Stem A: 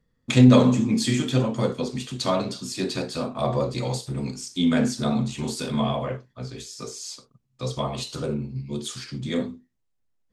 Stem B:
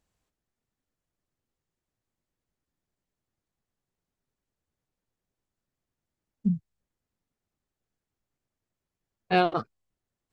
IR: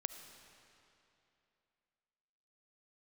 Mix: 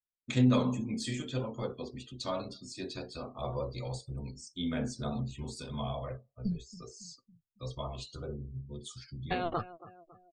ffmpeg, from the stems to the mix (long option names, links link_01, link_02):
-filter_complex "[0:a]aphaser=in_gain=1:out_gain=1:delay=3.7:decay=0.2:speed=0.2:type=triangular,volume=-12dB,asplit=3[link_01][link_02][link_03];[link_02]volume=-18.5dB[link_04];[1:a]alimiter=limit=-17.5dB:level=0:latency=1:release=15,acompressor=threshold=-27dB:ratio=2.5,volume=0dB,asplit=2[link_05][link_06];[link_06]volume=-17.5dB[link_07];[link_03]apad=whole_len=455129[link_08];[link_05][link_08]sidechaincompress=threshold=-35dB:ratio=8:attack=8.4:release=197[link_09];[2:a]atrim=start_sample=2205[link_10];[link_04][link_10]afir=irnorm=-1:irlink=0[link_11];[link_07]aecho=0:1:277|554|831|1108|1385|1662|1939:1|0.51|0.26|0.133|0.0677|0.0345|0.0176[link_12];[link_01][link_09][link_11][link_12]amix=inputs=4:normalize=0,afftdn=noise_reduction=34:noise_floor=-51,asubboost=boost=9:cutoff=66"